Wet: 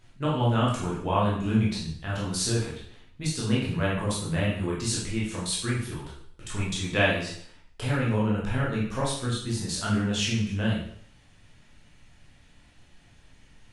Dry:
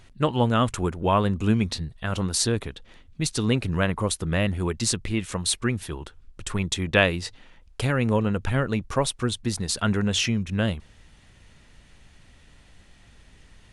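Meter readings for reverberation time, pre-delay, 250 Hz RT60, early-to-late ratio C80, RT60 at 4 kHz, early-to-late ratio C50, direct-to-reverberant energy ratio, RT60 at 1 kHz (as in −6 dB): 0.60 s, 8 ms, 0.60 s, 6.5 dB, 0.55 s, 2.5 dB, −6.5 dB, 0.60 s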